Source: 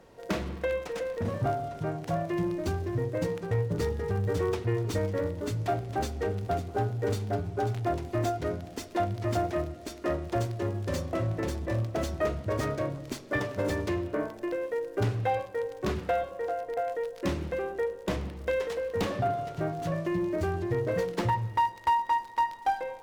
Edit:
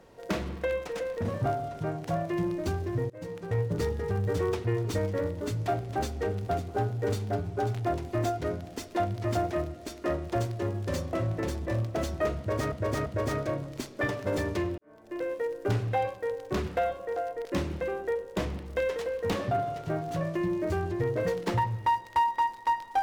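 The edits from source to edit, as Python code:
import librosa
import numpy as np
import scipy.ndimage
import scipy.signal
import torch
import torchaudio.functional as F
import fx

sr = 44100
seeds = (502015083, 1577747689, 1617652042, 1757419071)

y = fx.edit(x, sr, fx.fade_in_from(start_s=3.1, length_s=0.5, floor_db=-23.0),
    fx.repeat(start_s=12.38, length_s=0.34, count=3),
    fx.fade_in_span(start_s=14.1, length_s=0.46, curve='qua'),
    fx.cut(start_s=16.77, length_s=0.39), tone=tone)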